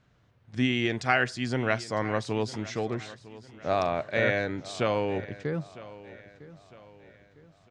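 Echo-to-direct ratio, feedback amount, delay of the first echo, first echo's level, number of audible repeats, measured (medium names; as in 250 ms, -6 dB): -17.0 dB, 43%, 955 ms, -18.0 dB, 3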